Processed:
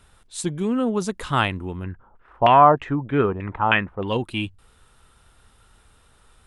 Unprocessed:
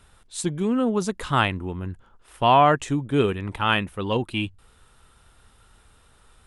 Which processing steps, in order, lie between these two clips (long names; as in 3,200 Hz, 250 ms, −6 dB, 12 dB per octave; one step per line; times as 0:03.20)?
0:01.84–0:04.08: auto-filter low-pass saw down 3.2 Hz 680–2,500 Hz